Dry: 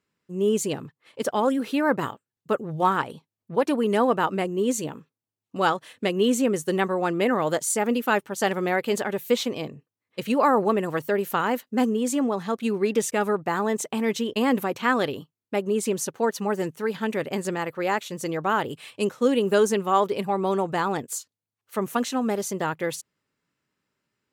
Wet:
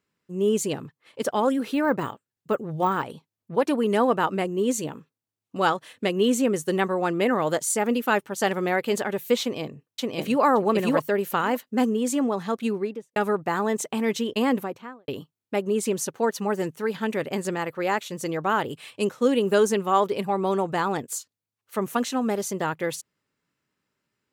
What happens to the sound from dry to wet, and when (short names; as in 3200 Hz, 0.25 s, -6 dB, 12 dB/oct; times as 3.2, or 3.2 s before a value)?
1.73–3.05 de-esser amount 100%
9.41–10.42 echo throw 0.57 s, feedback 10%, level -0.5 dB
12.6–13.16 studio fade out
14.38–15.08 studio fade out